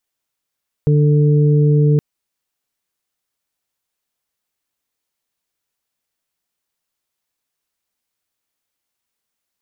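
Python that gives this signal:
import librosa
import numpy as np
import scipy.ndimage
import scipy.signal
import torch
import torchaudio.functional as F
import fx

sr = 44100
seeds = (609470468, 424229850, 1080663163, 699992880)

y = fx.additive_steady(sr, length_s=1.12, hz=148.0, level_db=-10, upper_db=(-13, -9.0))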